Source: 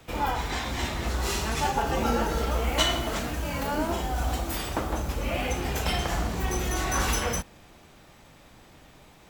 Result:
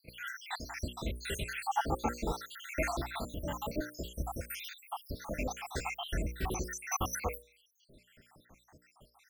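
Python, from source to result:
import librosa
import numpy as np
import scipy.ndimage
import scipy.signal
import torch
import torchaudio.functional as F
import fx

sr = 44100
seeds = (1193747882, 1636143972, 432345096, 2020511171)

y = fx.spec_dropout(x, sr, seeds[0], share_pct=79)
y = fx.hum_notches(y, sr, base_hz=60, count=10)
y = y * 10.0 ** (-2.5 / 20.0)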